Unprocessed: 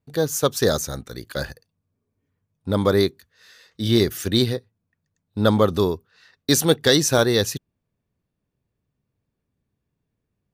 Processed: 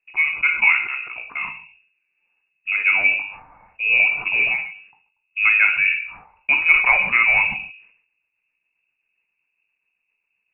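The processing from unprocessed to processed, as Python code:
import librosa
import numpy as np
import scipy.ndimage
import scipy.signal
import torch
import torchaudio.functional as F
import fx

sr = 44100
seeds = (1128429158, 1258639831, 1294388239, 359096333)

y = fx.hum_notches(x, sr, base_hz=50, count=8)
y = fx.rotary_switch(y, sr, hz=0.8, then_hz=7.5, switch_at_s=6.83)
y = fx.freq_invert(y, sr, carrier_hz=2700)
y = fx.rev_gated(y, sr, seeds[0], gate_ms=170, shape='falling', drr_db=5.0)
y = fx.sustainer(y, sr, db_per_s=89.0)
y = y * 10.0 ** (3.5 / 20.0)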